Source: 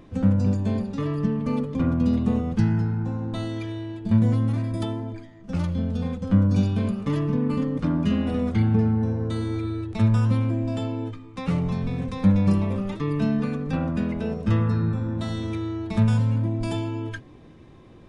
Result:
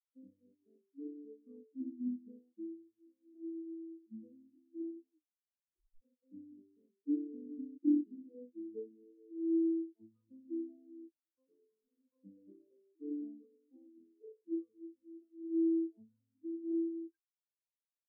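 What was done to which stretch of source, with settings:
5.13 tape stop 0.88 s
13.48–14.78 low shelf 150 Hz -4 dB
whole clip: resonant low shelf 230 Hz -12 dB, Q 3; spectral expander 4:1; gain -8.5 dB

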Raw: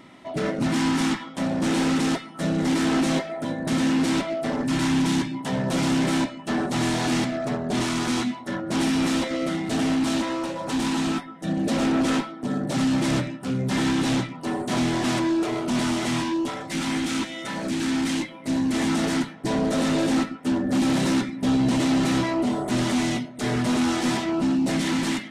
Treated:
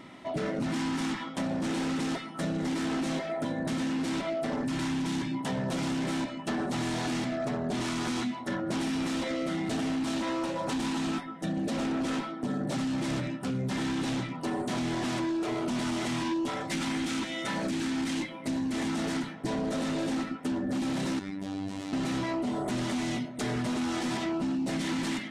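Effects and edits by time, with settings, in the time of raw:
21.19–21.93 robotiser 97.1 Hz
whole clip: high shelf 10000 Hz -4 dB; limiter -21.5 dBFS; compressor, threshold -28 dBFS

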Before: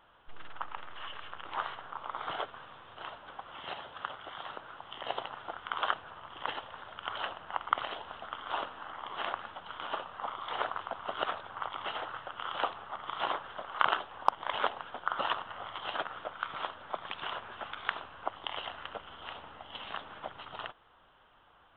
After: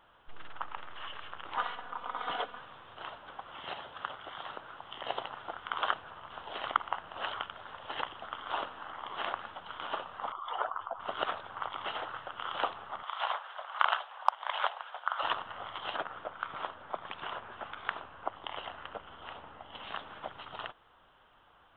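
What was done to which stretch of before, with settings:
1.57–2.6 comb 4.1 ms, depth 69%
6.31–8.18 reverse
10.32–11 spectral contrast raised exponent 1.8
13.03–15.23 inverse Chebyshev high-pass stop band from 180 Hz, stop band 60 dB
15.96–19.84 high shelf 3900 Hz -12 dB

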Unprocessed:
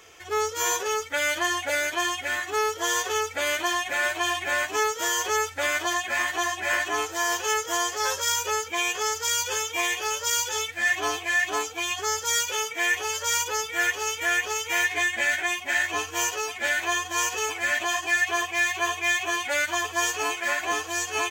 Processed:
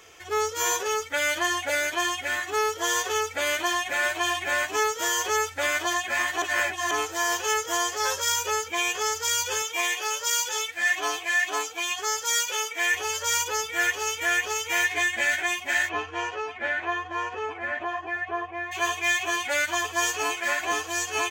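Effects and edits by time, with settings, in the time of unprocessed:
6.42–6.91 reverse
9.62–12.94 HPF 420 Hz 6 dB/oct
15.88–18.71 LPF 2500 Hz -> 1000 Hz

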